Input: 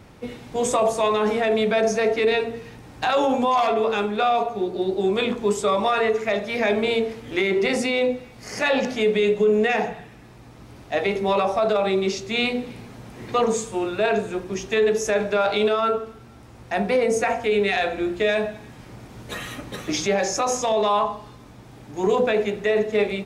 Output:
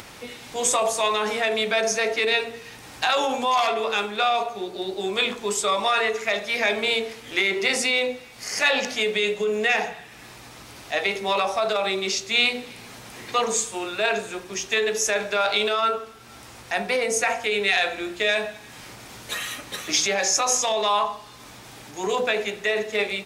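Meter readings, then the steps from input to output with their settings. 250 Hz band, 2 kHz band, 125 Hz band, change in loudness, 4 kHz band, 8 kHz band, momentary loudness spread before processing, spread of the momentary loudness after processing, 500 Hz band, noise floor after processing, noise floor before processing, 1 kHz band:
−8.5 dB, +3.5 dB, −9.5 dB, −1.0 dB, +6.0 dB, +7.5 dB, 13 LU, 19 LU, −5.0 dB, −44 dBFS, −45 dBFS, −1.0 dB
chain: high-shelf EQ 2,100 Hz +8 dB
upward compression, threshold −30 dBFS
low-shelf EQ 460 Hz −11.5 dB

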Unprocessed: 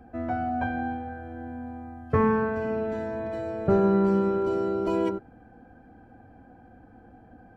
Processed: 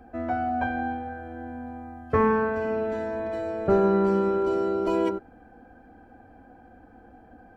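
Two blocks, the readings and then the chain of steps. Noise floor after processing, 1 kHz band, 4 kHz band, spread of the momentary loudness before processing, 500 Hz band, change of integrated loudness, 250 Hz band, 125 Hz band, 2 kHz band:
−53 dBFS, +2.5 dB, can't be measured, 16 LU, +1.5 dB, +1.0 dB, −1.0 dB, −3.0 dB, +2.5 dB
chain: parametric band 130 Hz −9.5 dB 1.2 octaves
level +2.5 dB

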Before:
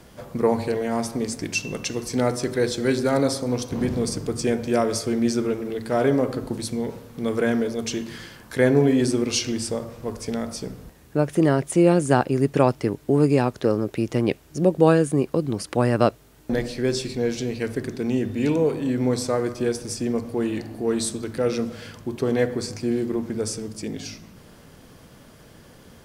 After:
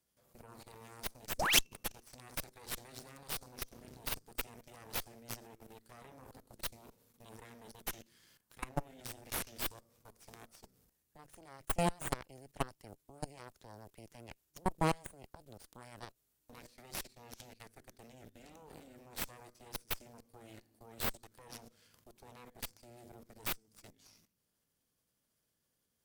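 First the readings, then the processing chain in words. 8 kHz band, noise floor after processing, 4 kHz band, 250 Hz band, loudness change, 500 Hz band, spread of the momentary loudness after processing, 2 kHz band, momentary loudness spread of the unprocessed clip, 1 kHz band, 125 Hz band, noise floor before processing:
−11.5 dB, −82 dBFS, −8.5 dB, −26.5 dB, −16.0 dB, −26.0 dB, 22 LU, −11.5 dB, 11 LU, −14.0 dB, −22.0 dB, −49 dBFS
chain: sound drawn into the spectrogram rise, 0:01.38–0:01.60, 220–4,100 Hz −14 dBFS
output level in coarse steps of 15 dB
first-order pre-emphasis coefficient 0.8
harmonic generator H 3 −8 dB, 6 −10 dB, 8 −25 dB, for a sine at −16 dBFS
level +1 dB

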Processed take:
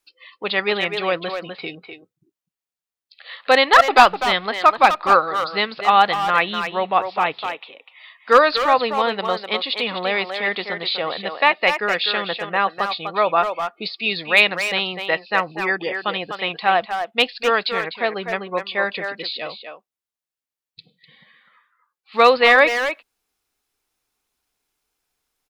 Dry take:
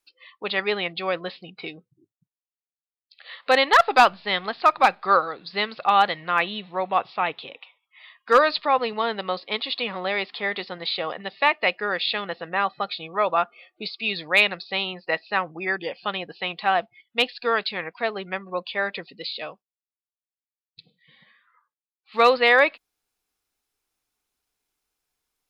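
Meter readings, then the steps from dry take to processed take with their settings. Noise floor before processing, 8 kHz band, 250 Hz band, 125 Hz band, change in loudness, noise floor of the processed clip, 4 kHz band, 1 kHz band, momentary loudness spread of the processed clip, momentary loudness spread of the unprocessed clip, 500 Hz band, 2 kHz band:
below −85 dBFS, can't be measured, +4.5 dB, +4.0 dB, +4.5 dB, below −85 dBFS, +4.5 dB, +4.5 dB, 13 LU, 14 LU, +4.5 dB, +4.5 dB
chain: far-end echo of a speakerphone 250 ms, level −6 dB
level +4 dB

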